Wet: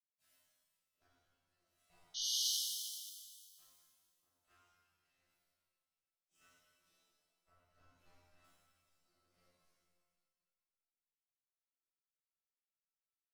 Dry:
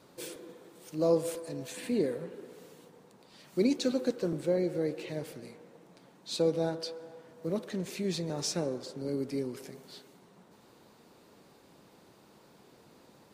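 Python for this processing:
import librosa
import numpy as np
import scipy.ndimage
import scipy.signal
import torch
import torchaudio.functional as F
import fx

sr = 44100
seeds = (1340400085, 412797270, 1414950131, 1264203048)

y = np.minimum(x, 2.0 * 10.0 ** (-28.0 / 20.0) - x)
y = fx.spec_gate(y, sr, threshold_db=-15, keep='weak')
y = fx.low_shelf(y, sr, hz=110.0, db=7.5)
y = fx.notch(y, sr, hz=880.0, q=5.6)
y = fx.comb_fb(y, sr, f0_hz=660.0, decay_s=0.35, harmonics='all', damping=0.0, mix_pct=90)
y = fx.gate_flip(y, sr, shuts_db=-48.0, range_db=-33)
y = fx.power_curve(y, sr, exponent=2.0)
y = fx.comb_fb(y, sr, f0_hz=88.0, decay_s=0.36, harmonics='all', damping=0.0, mix_pct=100)
y = fx.spec_paint(y, sr, seeds[0], shape='noise', start_s=2.14, length_s=0.36, low_hz=2900.0, high_hz=6600.0, level_db=-47.0)
y = fx.rev_shimmer(y, sr, seeds[1], rt60_s=1.9, semitones=12, shimmer_db=-8, drr_db=-11.5)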